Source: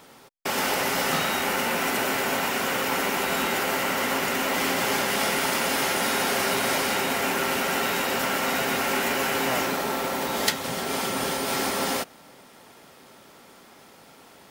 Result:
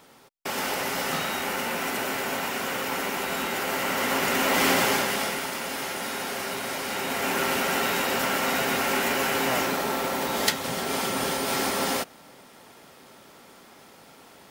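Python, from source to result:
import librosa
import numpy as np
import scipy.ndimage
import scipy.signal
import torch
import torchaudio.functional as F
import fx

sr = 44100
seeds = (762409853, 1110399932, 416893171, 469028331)

y = fx.gain(x, sr, db=fx.line((3.52, -3.5), (4.73, 4.0), (5.5, -7.0), (6.77, -7.0), (7.39, 0.0)))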